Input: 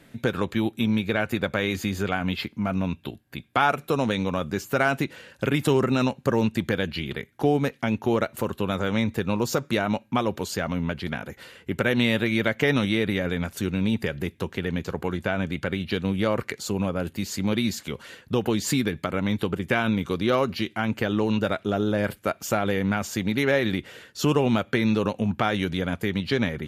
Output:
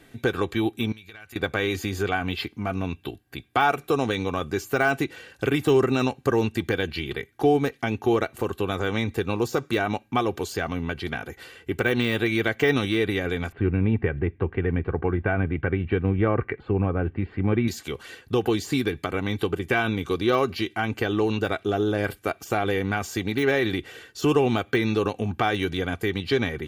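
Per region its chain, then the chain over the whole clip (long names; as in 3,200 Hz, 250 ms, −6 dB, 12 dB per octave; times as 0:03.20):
0:00.92–0:01.36: guitar amp tone stack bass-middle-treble 5-5-5 + downward compressor 10 to 1, threshold −39 dBFS
0:13.52–0:17.68: inverse Chebyshev low-pass filter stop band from 5,600 Hz, stop band 50 dB + low-shelf EQ 180 Hz +9.5 dB
whole clip: de-essing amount 70%; comb filter 2.6 ms, depth 52%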